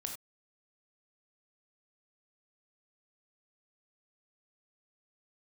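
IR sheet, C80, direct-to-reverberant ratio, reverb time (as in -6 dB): 10.5 dB, 2.5 dB, not exponential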